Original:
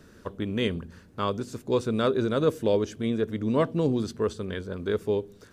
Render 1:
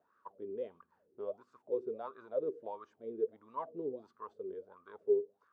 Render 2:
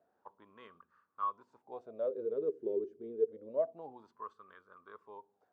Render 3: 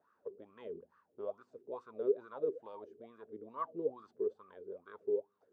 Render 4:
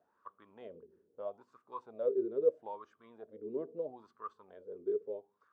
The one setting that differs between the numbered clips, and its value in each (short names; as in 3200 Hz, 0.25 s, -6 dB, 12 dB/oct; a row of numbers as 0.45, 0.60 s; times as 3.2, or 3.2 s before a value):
wah, rate: 1.5, 0.27, 2.3, 0.77 Hz